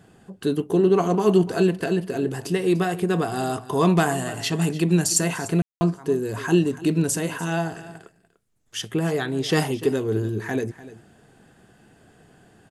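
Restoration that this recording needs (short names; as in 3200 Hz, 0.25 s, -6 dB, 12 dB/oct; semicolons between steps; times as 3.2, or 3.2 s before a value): clip repair -7.5 dBFS; room tone fill 5.62–5.81; inverse comb 0.295 s -17 dB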